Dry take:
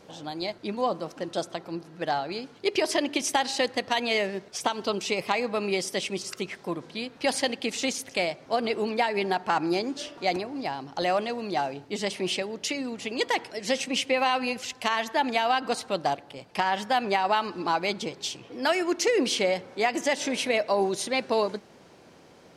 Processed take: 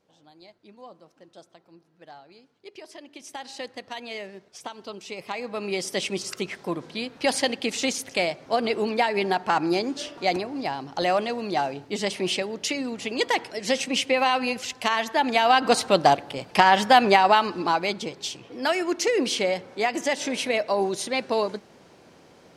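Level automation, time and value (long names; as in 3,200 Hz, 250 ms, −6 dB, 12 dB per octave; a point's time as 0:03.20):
0:03.06 −18.5 dB
0:03.53 −10 dB
0:05.03 −10 dB
0:06.02 +2.5 dB
0:15.23 +2.5 dB
0:15.76 +9 dB
0:17.02 +9 dB
0:17.99 +0.5 dB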